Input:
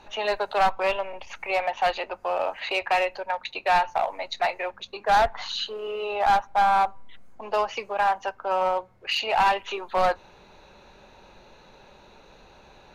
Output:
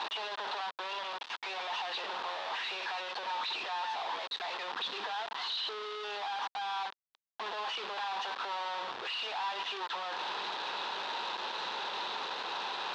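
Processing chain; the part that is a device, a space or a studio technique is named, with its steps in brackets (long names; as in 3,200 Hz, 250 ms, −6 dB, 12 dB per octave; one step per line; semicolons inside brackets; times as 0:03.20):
home computer beeper (sign of each sample alone; loudspeaker in its box 570–4,300 Hz, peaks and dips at 580 Hz −7 dB, 1,000 Hz +5 dB, 2,200 Hz −6 dB, 3,600 Hz +5 dB)
level −8.5 dB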